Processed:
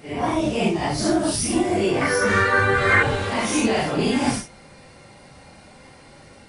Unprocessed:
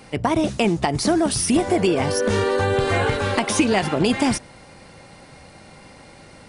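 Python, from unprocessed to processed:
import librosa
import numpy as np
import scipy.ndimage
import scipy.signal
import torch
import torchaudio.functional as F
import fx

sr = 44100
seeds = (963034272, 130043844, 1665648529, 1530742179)

y = fx.phase_scramble(x, sr, seeds[0], window_ms=200)
y = fx.band_shelf(y, sr, hz=1600.0, db=12.0, octaves=1.2, at=(2.01, 3.03))
y = F.gain(torch.from_numpy(y), -1.5).numpy()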